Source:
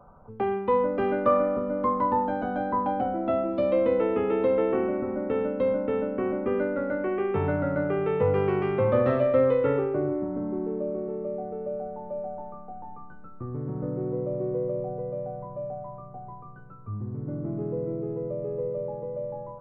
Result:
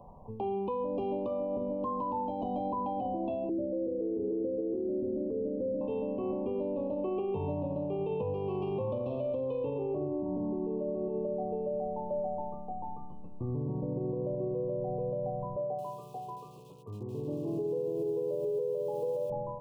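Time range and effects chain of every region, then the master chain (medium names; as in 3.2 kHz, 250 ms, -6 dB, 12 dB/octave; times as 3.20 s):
3.49–5.81 s: steep low-pass 580 Hz 48 dB/octave + peaking EQ 340 Hz +9 dB 0.28 oct
15.56–19.30 s: cabinet simulation 190–2400 Hz, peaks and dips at 220 Hz -10 dB, 440 Hz +9 dB, 630 Hz -3 dB, 1.4 kHz +5 dB + bit-crushed delay 223 ms, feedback 55%, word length 8-bit, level -14 dB
whole clip: compression 6:1, threshold -28 dBFS; Chebyshev band-stop 1.1–2.5 kHz, order 5; peak limiter -28 dBFS; trim +2 dB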